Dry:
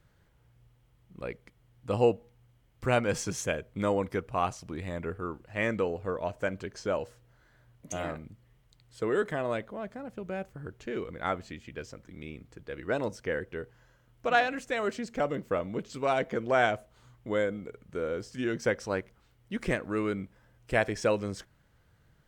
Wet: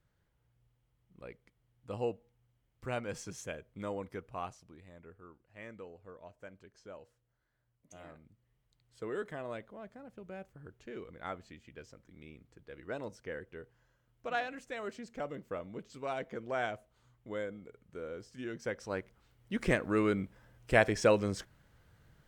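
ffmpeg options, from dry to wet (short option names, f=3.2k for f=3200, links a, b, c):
-af "volume=9dB,afade=t=out:st=4.39:d=0.4:silence=0.398107,afade=t=in:st=7.9:d=1.14:silence=0.354813,afade=t=in:st=18.66:d=1.19:silence=0.281838"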